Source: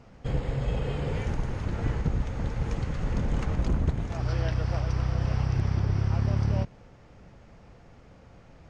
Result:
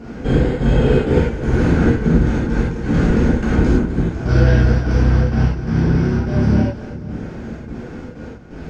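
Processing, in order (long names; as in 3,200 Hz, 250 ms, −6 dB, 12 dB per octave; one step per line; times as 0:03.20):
downward compressor, threshold −29 dBFS, peak gain reduction 9.5 dB
hollow resonant body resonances 250/350/1,500 Hz, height 12 dB, ringing for 25 ms
gate pattern "xxxx.xxx.x.." 127 BPM −12 dB
echo with a time of its own for lows and highs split 400 Hz, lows 569 ms, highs 242 ms, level −15 dB
reverb whose tail is shaped and stops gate 130 ms flat, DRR −7.5 dB
level +7.5 dB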